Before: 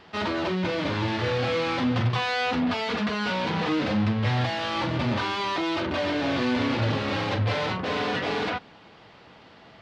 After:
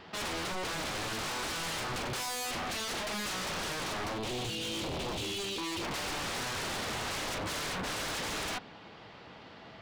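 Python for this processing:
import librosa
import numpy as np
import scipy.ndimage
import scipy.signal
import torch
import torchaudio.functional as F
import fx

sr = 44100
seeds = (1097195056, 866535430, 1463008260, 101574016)

y = fx.ellip_bandstop(x, sr, low_hz=480.0, high_hz=2700.0, order=3, stop_db=40, at=(4.18, 5.83))
y = 10.0 ** (-31.0 / 20.0) * (np.abs((y / 10.0 ** (-31.0 / 20.0) + 3.0) % 4.0 - 2.0) - 1.0)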